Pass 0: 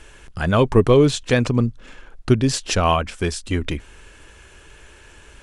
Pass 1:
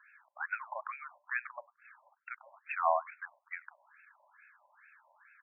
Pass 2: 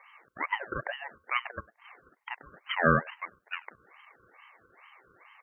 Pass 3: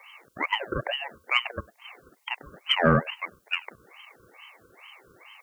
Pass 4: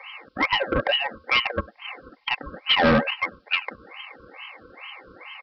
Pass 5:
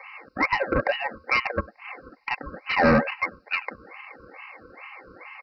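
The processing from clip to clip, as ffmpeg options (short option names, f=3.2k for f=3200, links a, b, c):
-filter_complex "[0:a]asplit=2[a][b];[b]adelay=98,lowpass=f=3.5k:p=1,volume=-23dB,asplit=2[c][d];[d]adelay=98,lowpass=f=3.5k:p=1,volume=0.26[e];[a][c][e]amix=inputs=3:normalize=0,afftfilt=real='re*between(b*sr/1024,750*pow(1900/750,0.5+0.5*sin(2*PI*2.3*pts/sr))/1.41,750*pow(1900/750,0.5+0.5*sin(2*PI*2.3*pts/sr))*1.41)':imag='im*between(b*sr/1024,750*pow(1900/750,0.5+0.5*sin(2*PI*2.3*pts/sr))/1.41,750*pow(1900/750,0.5+0.5*sin(2*PI*2.3*pts/sr))*1.41)':win_size=1024:overlap=0.75,volume=-8dB"
-af "aeval=exprs='val(0)*sin(2*PI*510*n/s)':c=same,volume=8.5dB"
-filter_complex "[0:a]acrossover=split=800[a][b];[a]aeval=exprs='0.2*sin(PI/2*1.58*val(0)/0.2)':c=same[c];[b]aexciter=amount=4.9:drive=7.5:freq=2.5k[d];[c][d]amix=inputs=2:normalize=0"
-af "aecho=1:1:3.8:0.51,aresample=11025,asoftclip=type=tanh:threshold=-22.5dB,aresample=44100,volume=8.5dB"
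-af "asuperstop=centerf=3300:order=4:qfactor=1.9"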